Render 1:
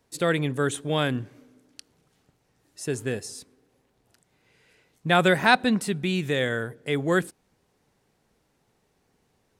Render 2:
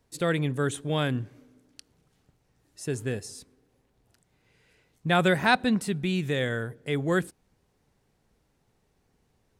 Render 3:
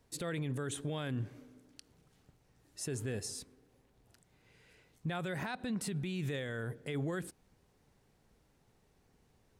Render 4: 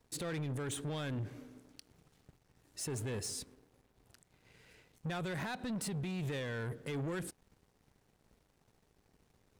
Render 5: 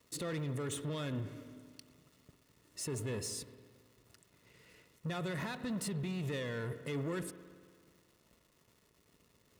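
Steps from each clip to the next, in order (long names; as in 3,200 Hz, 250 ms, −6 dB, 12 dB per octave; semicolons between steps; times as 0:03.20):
low-shelf EQ 110 Hz +10.5 dB; level −3.5 dB
downward compressor 6 to 1, threshold −27 dBFS, peak gain reduction 11 dB; brickwall limiter −29.5 dBFS, peak gain reduction 12 dB
leveller curve on the samples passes 2; level −4 dB
surface crackle 400 per second −56 dBFS; notch comb filter 790 Hz; spring reverb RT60 1.9 s, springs 55 ms, chirp 60 ms, DRR 12.5 dB; level +1 dB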